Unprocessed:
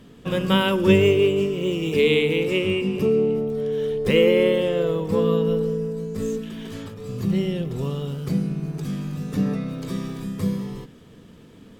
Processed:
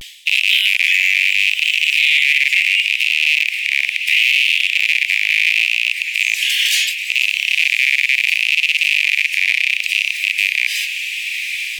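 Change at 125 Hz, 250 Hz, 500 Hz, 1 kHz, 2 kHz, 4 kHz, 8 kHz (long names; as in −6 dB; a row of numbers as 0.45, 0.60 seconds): below −40 dB, below −40 dB, below −40 dB, below −25 dB, +20.0 dB, +16.5 dB, can't be measured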